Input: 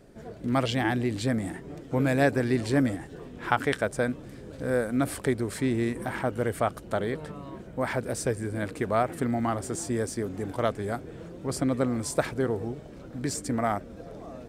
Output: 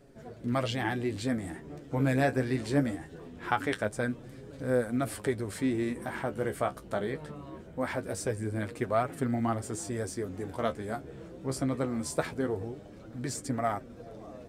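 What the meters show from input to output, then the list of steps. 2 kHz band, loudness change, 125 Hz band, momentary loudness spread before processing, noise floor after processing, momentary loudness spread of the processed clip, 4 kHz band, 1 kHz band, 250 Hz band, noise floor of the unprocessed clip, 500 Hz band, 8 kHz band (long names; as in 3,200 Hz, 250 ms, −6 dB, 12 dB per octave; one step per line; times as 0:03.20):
−4.0 dB, −3.5 dB, −3.0 dB, 13 LU, −49 dBFS, 13 LU, −4.0 dB, −3.5 dB, −3.5 dB, −45 dBFS, −3.5 dB, −4.0 dB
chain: flanger 0.22 Hz, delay 7 ms, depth 8.6 ms, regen +38%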